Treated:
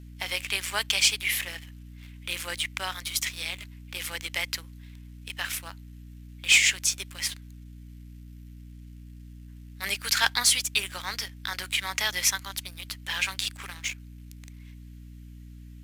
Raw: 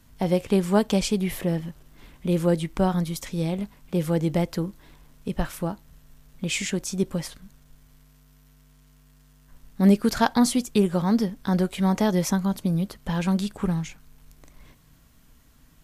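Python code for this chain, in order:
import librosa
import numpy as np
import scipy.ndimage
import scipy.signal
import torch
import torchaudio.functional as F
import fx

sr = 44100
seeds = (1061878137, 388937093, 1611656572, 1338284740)

y = fx.highpass_res(x, sr, hz=2200.0, q=1.7)
y = fx.leveller(y, sr, passes=2)
y = fx.add_hum(y, sr, base_hz=60, snr_db=13)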